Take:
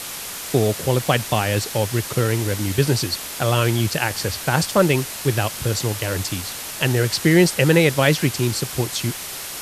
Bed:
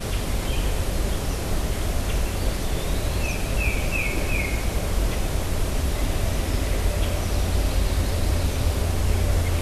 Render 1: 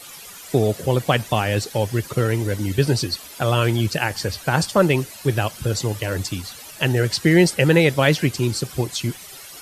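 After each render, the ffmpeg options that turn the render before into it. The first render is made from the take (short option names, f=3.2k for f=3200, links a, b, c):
-af "afftdn=nr=13:nf=-32"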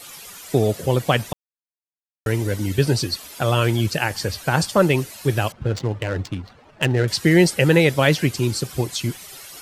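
-filter_complex "[0:a]asettb=1/sr,asplit=3[a][b][c];[a]atrim=end=5.524[d];[b]atrim=start=5.52:end=7.08,asetpts=PTS-STARTPTS,afade=t=in:d=0.004:c=qsin,afade=t=out:st=1.556:d=0.004:c=qsin,adynamicsmooth=sensitivity=2.5:basefreq=1k[e];[c]atrim=start=7.076[f];[d][e]acrossfade=d=0.004:c1=hsin:c2=qsin[g];[g][f]acrossfade=d=0.004:c1=qsin:c2=hsin,asplit=3[h][i][j];[h]atrim=end=1.33,asetpts=PTS-STARTPTS,afade=t=out:st=1.326:d=0.004:c=hsin[k];[i]atrim=start=1.33:end=2.26,asetpts=PTS-STARTPTS,volume=0[l];[j]atrim=start=2.26,asetpts=PTS-STARTPTS,afade=t=in:d=0.004:c=hsin[m];[k][l][m]concat=n=3:v=0:a=1"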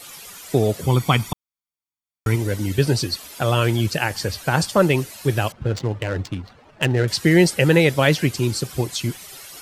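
-filter_complex "[0:a]asettb=1/sr,asplit=3[a][b][c];[a]atrim=end=0.814[d];[b]atrim=start=0.81:end=2.36,asetpts=PTS-STARTPTS,afade=t=in:d=0.004:c=qsin,afade=t=out:st=1.546:d=0.004:c=qsin,aecho=1:1:0.9:0.65,atrim=end_sample=68355[e];[c]atrim=start=2.356[f];[d][e]acrossfade=d=0.004:c1=hsin:c2=qsin[g];[g][f]acrossfade=d=0.004:c1=qsin:c2=hsin"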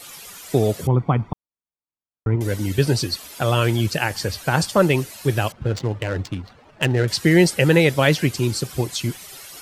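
-filter_complex "[0:a]asettb=1/sr,asplit=3[a][b][c];[a]atrim=end=0.874[d];[b]atrim=start=0.87:end=2.41,asetpts=PTS-STARTPTS,afade=t=in:d=0.004:c=qsin,afade=t=out:st=1.536:d=0.004:c=qsin,lowpass=1k[e];[c]atrim=start=2.406[f];[d][e]acrossfade=d=0.004:c1=hsin:c2=qsin[g];[g][f]acrossfade=d=0.004:c1=qsin:c2=hsin"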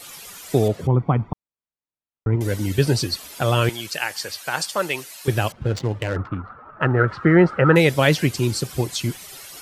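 -filter_complex "[0:a]asettb=1/sr,asplit=3[a][b][c];[a]atrim=end=0.684[d];[b]atrim=start=0.68:end=2.33,asetpts=PTS-STARTPTS,afade=t=in:d=0.004:c=qsin,afade=t=out:st=1.646:d=0.004:c=qsin,aemphasis=mode=reproduction:type=75kf[e];[c]atrim=start=2.326[f];[d][e]acrossfade=d=0.004:c1=hsin:c2=qsin[g];[g][f]acrossfade=d=0.004:c1=qsin:c2=hsin,asettb=1/sr,asplit=3[h][i][j];[h]atrim=end=3.694[k];[i]atrim=start=3.69:end=5.28,asetpts=PTS-STARTPTS,afade=t=in:d=0.004:c=qsin,afade=t=out:st=1.586:d=0.004:c=qsin,highpass=f=1.2k:p=1[l];[j]atrim=start=5.276[m];[k][l]acrossfade=d=0.004:c1=hsin:c2=qsin[n];[n][m]acrossfade=d=0.004:c1=qsin:c2=hsin,asettb=1/sr,asplit=3[o][p][q];[o]atrim=end=6.164[r];[p]atrim=start=6.16:end=7.76,asetpts=PTS-STARTPTS,afade=t=in:d=0.004:c=qsin,afade=t=out:st=1.596:d=0.004:c=qsin,lowpass=f=1.3k:t=q:w=9.2[s];[q]atrim=start=7.756[t];[r][s]acrossfade=d=0.004:c1=hsin:c2=qsin[u];[u][t]acrossfade=d=0.004:c1=qsin:c2=hsin"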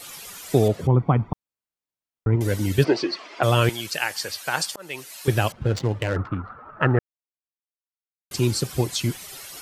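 -filter_complex "[0:a]asplit=3[a][b][c];[a]afade=t=out:st=2.83:d=0.02[d];[b]highpass=f=230:w=0.5412,highpass=f=230:w=1.3066,equalizer=f=240:t=q:w=4:g=-4,equalizer=f=350:t=q:w=4:g=8,equalizer=f=670:t=q:w=4:g=6,equalizer=f=1.1k:t=q:w=4:g=8,equalizer=f=2.1k:t=q:w=4:g=6,equalizer=f=3.8k:t=q:w=4:g=-6,lowpass=f=4.6k:w=0.5412,lowpass=f=4.6k:w=1.3066,afade=t=in:st=2.83:d=0.02,afade=t=out:st=3.42:d=0.02[e];[c]afade=t=in:st=3.42:d=0.02[f];[d][e][f]amix=inputs=3:normalize=0,asplit=4[g][h][i][j];[g]atrim=end=4.76,asetpts=PTS-STARTPTS,afade=t=out:st=4.756:d=0.004:c=hsin[k];[h]atrim=start=4.76:end=6.99,asetpts=PTS-STARTPTS,afade=t=in:d=0.41,afade=t=out:st=2.226:d=0.004:c=hsin[l];[i]atrim=start=6.99:end=8.31,asetpts=PTS-STARTPTS,volume=0[m];[j]atrim=start=8.31,asetpts=PTS-STARTPTS,afade=t=in:d=0.004:c=hsin[n];[k][l][m][n]concat=n=4:v=0:a=1"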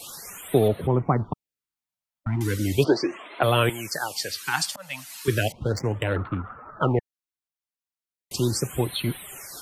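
-filter_complex "[0:a]acrossover=split=180[a][b];[a]asoftclip=type=hard:threshold=-27dB[c];[c][b]amix=inputs=2:normalize=0,afftfilt=real='re*(1-between(b*sr/1024,360*pow(6300/360,0.5+0.5*sin(2*PI*0.36*pts/sr))/1.41,360*pow(6300/360,0.5+0.5*sin(2*PI*0.36*pts/sr))*1.41))':imag='im*(1-between(b*sr/1024,360*pow(6300/360,0.5+0.5*sin(2*PI*0.36*pts/sr))/1.41,360*pow(6300/360,0.5+0.5*sin(2*PI*0.36*pts/sr))*1.41))':win_size=1024:overlap=0.75"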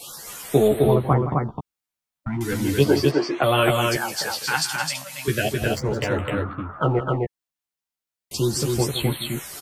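-filter_complex "[0:a]asplit=2[a][b];[b]adelay=14,volume=-3.5dB[c];[a][c]amix=inputs=2:normalize=0,aecho=1:1:166.2|259.5:0.251|0.708"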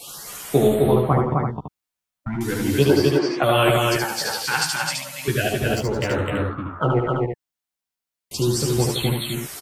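-af "aecho=1:1:74:0.631"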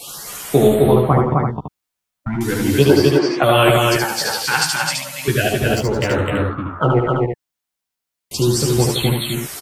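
-af "volume=4.5dB,alimiter=limit=-1dB:level=0:latency=1"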